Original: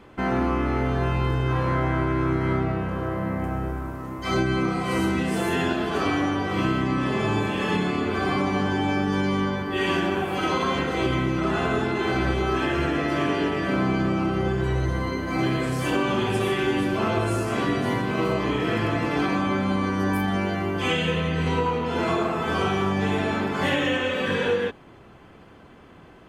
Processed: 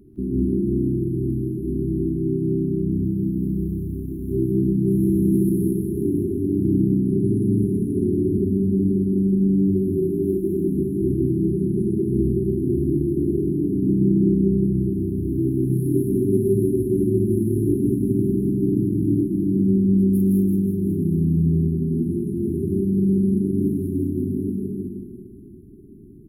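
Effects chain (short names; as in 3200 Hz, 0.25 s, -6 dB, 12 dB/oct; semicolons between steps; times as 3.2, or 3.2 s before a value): FFT band-reject 410–9800 Hz; reverse bouncing-ball echo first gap 0.16 s, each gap 1.1×, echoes 5; non-linear reverb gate 0.24 s rising, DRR 1.5 dB; gain +2 dB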